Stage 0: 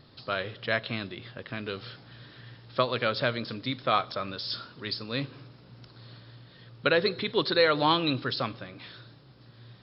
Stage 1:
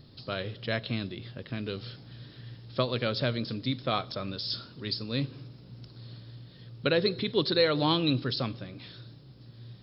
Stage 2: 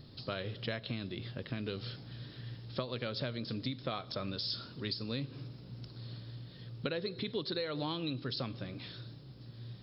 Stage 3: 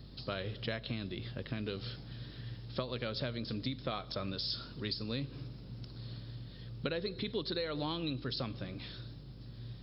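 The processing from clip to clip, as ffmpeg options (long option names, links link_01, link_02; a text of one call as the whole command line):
ffmpeg -i in.wav -af "equalizer=frequency=1300:width=0.41:gain=-12,volume=5dB" out.wav
ffmpeg -i in.wav -af "acompressor=threshold=-33dB:ratio=12" out.wav
ffmpeg -i in.wav -af "aeval=exprs='val(0)+0.00251*(sin(2*PI*50*n/s)+sin(2*PI*2*50*n/s)/2+sin(2*PI*3*50*n/s)/3+sin(2*PI*4*50*n/s)/4+sin(2*PI*5*50*n/s)/5)':channel_layout=same" out.wav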